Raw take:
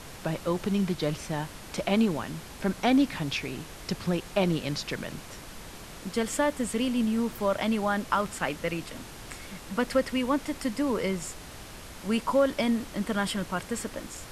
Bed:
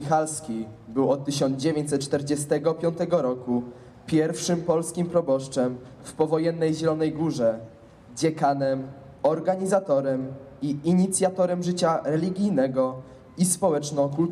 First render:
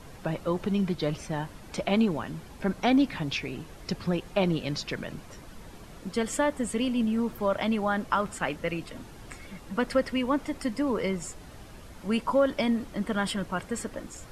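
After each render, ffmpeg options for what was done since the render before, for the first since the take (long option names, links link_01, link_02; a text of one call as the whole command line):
ffmpeg -i in.wav -af "afftdn=noise_reduction=9:noise_floor=-44" out.wav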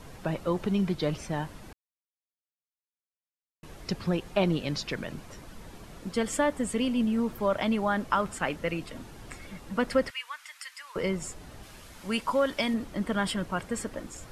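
ffmpeg -i in.wav -filter_complex "[0:a]asettb=1/sr,asplit=3[link_01][link_02][link_03];[link_01]atrim=end=10.104[link_04];[link_02]atrim=start=10.1:end=10.96,asetpts=PTS-STARTPTS,afade=type=in:duration=0.004:curve=qsin,afade=type=out:start_time=0.856:duration=0.004:curve=qsin,highpass=frequency=1400:width=0.5412,highpass=frequency=1400:width=1.3066[link_05];[link_03]atrim=start=10.956[link_06];[link_04][link_05]acrossfade=duration=0.004:curve1=hsin:curve2=qsin[link_07];[link_07][link_06]acrossfade=duration=0.004:curve1=qsin:curve2=hsin,asettb=1/sr,asplit=3[link_08][link_09][link_10];[link_08]atrim=end=11.634[link_11];[link_09]atrim=start=11.63:end=12.74,asetpts=PTS-STARTPTS,afade=type=in:duration=0.004:curve=qsin,afade=type=out:start_time=1.106:duration=0.004:curve=qsin,tiltshelf=frequency=1100:gain=-4.5[link_12];[link_10]atrim=start=12.736[link_13];[link_11][link_12]acrossfade=duration=0.004:curve1=hsin:curve2=qsin[link_14];[link_14][link_13]acrossfade=duration=0.004:curve1=qsin:curve2=hsin,asplit=3[link_15][link_16][link_17];[link_15]atrim=end=1.73,asetpts=PTS-STARTPTS,afade=type=out:start_time=1.726:duration=0.004:curve=hsin[link_18];[link_16]atrim=start=1.73:end=3.63,asetpts=PTS-STARTPTS,volume=0[link_19];[link_17]atrim=start=3.63,asetpts=PTS-STARTPTS,afade=type=in:duration=0.004:curve=hsin[link_20];[link_18][link_19][link_20]concat=n=3:v=0:a=1" out.wav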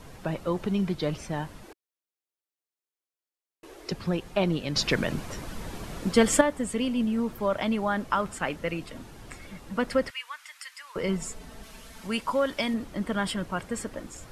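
ffmpeg -i in.wav -filter_complex "[0:a]asettb=1/sr,asplit=3[link_01][link_02][link_03];[link_01]atrim=end=1.654[link_04];[link_02]atrim=start=1.65:end=3.92,asetpts=PTS-STARTPTS,afade=type=in:duration=0.004:curve=qsin,afade=type=out:start_time=2.266:duration=0.004:curve=qsin,lowshelf=frequency=250:width_type=q:width=3:gain=-11.5[link_05];[link_03]atrim=start=3.916[link_06];[link_04][link_05]acrossfade=duration=0.004:curve1=hsin:curve2=qsin[link_07];[link_07][link_06]acrossfade=duration=0.004:curve1=qsin:curve2=hsin,asettb=1/sr,asplit=3[link_08][link_09][link_10];[link_08]atrim=end=11.084[link_11];[link_09]atrim=start=11.08:end=12.07,asetpts=PTS-STARTPTS,afade=type=in:duration=0.004:curve=qsin,afade=type=out:start_time=0.986:duration=0.004:curve=qsin,aecho=1:1:4.5:0.7,atrim=end_sample=43659[link_12];[link_10]atrim=start=12.066[link_13];[link_11][link_12]acrossfade=duration=0.004:curve1=hsin:curve2=qsin[link_14];[link_14][link_13]acrossfade=duration=0.004:curve1=qsin:curve2=hsin,asplit=3[link_15][link_16][link_17];[link_15]atrim=end=4.762[link_18];[link_16]atrim=start=4.758:end=6.412,asetpts=PTS-STARTPTS,volume=8.5dB[link_19];[link_17]atrim=start=6.408[link_20];[link_18][link_19]acrossfade=duration=0.004:curve1=hsin:curve2=hsin[link_21];[link_21][link_20]acrossfade=duration=0.004:curve1=hsin:curve2=hsin" out.wav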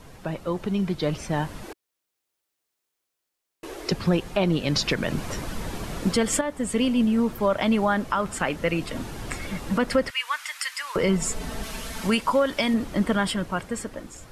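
ffmpeg -i in.wav -af "dynaudnorm=framelen=210:gausssize=17:maxgain=15.5dB,alimiter=limit=-12.5dB:level=0:latency=1:release=338" out.wav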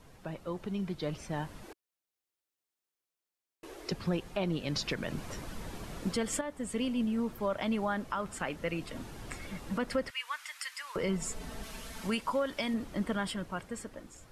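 ffmpeg -i in.wav -af "volume=-10dB" out.wav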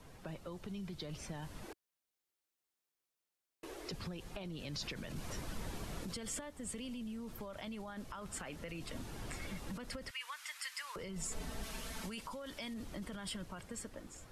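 ffmpeg -i in.wav -filter_complex "[0:a]alimiter=level_in=7dB:limit=-24dB:level=0:latency=1:release=15,volume=-7dB,acrossover=split=120|3000[link_01][link_02][link_03];[link_02]acompressor=threshold=-44dB:ratio=6[link_04];[link_01][link_04][link_03]amix=inputs=3:normalize=0" out.wav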